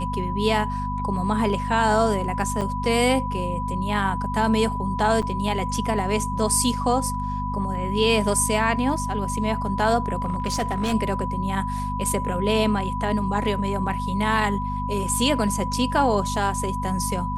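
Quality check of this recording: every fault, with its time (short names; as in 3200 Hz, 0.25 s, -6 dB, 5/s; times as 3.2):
hum 50 Hz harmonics 5 -29 dBFS
tone 990 Hz -28 dBFS
2.61–2.62 gap 5.9 ms
5.22–5.23 gap 6.5 ms
10.22–10.94 clipped -19.5 dBFS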